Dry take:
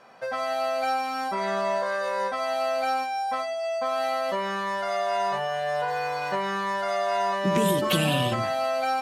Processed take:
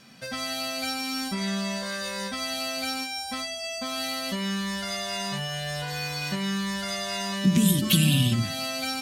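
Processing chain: FFT filter 240 Hz 0 dB, 440 Hz -19 dB, 900 Hz -23 dB, 3.5 kHz -2 dB, 13 kHz +2 dB; in parallel at +3 dB: compression, threshold -39 dBFS, peak gain reduction 16 dB; on the sum: trim +4 dB

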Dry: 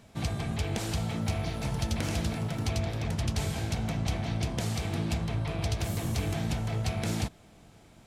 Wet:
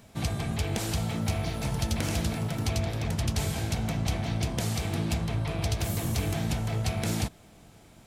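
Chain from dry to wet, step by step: treble shelf 11 kHz +9 dB; trim +1.5 dB

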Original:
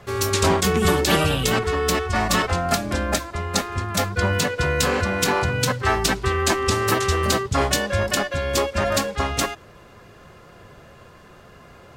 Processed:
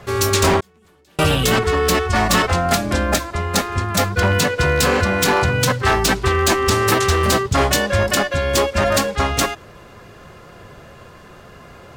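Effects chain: wavefolder -13.5 dBFS; 0.60–1.19 s: inverted gate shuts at -22 dBFS, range -39 dB; trim +5 dB

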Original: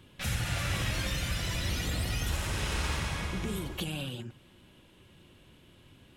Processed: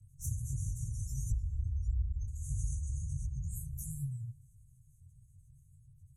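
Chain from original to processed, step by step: Chebyshev band-stop 140–6200 Hz, order 5; 1.30–2.27 s: resonant low shelf 110 Hz +12.5 dB, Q 1.5; spectral gate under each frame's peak -30 dB strong; compression 6:1, threshold -35 dBFS, peak gain reduction 17.5 dB; on a send at -23 dB: reverberation RT60 1.9 s, pre-delay 36 ms; on the sum: detune thickener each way 53 cents; trim +6.5 dB

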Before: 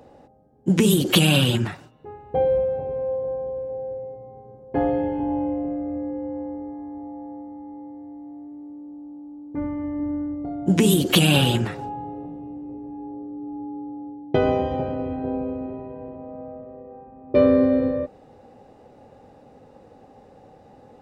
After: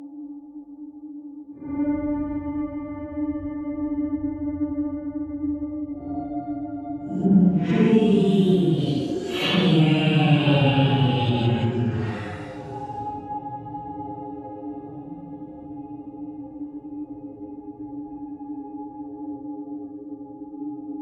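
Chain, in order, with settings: harmonic-percussive split percussive -4 dB; Paulstretch 4.9×, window 0.10 s, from 9.20 s; low-pass that closes with the level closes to 2.3 kHz, closed at -16 dBFS

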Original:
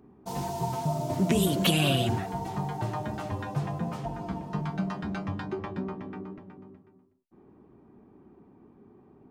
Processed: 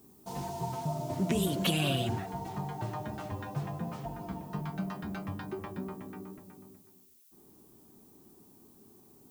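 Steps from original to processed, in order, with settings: added noise violet -57 dBFS; trim -5 dB

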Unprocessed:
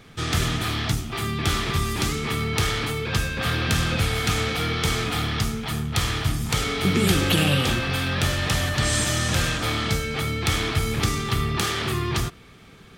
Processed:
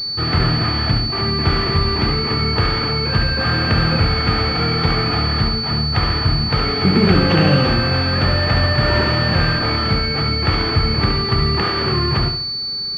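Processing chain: flutter echo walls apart 11.8 m, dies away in 0.56 s; class-D stage that switches slowly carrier 4.5 kHz; trim +6.5 dB

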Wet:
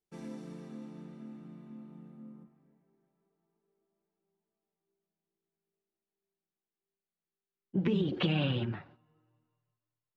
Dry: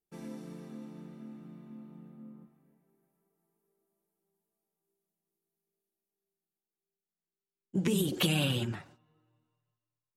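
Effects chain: Bessel low-pass 8.2 kHz, order 6, from 2.43 s 2.5 kHz

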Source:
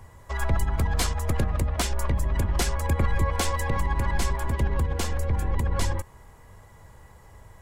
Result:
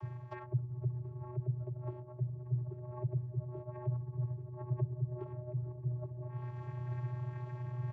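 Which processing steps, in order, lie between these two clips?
low-pass that closes with the level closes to 320 Hz, closed at -19.5 dBFS; low-pass 4.5 kHz 12 dB/octave; comb 2.1 ms, depth 42%; reverse; upward compressor, threshold -28 dBFS; reverse; peak limiter -21 dBFS, peak gain reduction 10.5 dB; compression, threshold -29 dBFS, peak gain reduction 6 dB; vocoder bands 16, square 128 Hz; on a send at -19 dB: reverberation RT60 0.55 s, pre-delay 13 ms; on the sum: speed mistake 25 fps video run at 24 fps; trim +6 dB

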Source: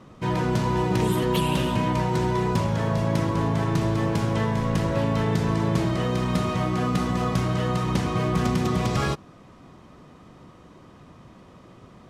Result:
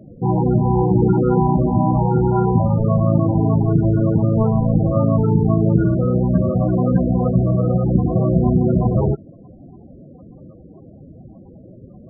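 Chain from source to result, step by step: sample-and-hold 25×; loudest bins only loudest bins 16; trim +8.5 dB

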